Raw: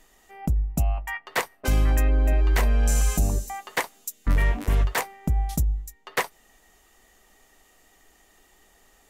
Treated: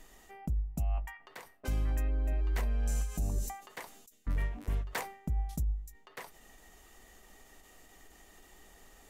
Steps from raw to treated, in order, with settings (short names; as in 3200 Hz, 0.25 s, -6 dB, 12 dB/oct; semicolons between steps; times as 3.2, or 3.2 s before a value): low shelf 340 Hz +4.5 dB; reverse; compressor 8:1, threshold -29 dBFS, peak gain reduction 16 dB; reverse; ending taper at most 110 dB/s